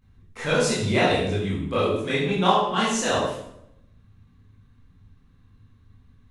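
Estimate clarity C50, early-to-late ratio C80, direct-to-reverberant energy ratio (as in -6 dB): 1.0 dB, 4.5 dB, -9.5 dB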